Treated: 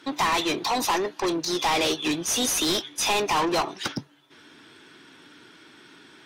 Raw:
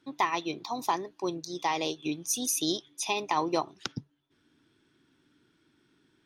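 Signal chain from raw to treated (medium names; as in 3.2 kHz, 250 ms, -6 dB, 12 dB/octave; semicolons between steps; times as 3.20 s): overdrive pedal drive 31 dB, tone 6.4 kHz, clips at -13 dBFS; trim -3.5 dB; AAC 48 kbps 48 kHz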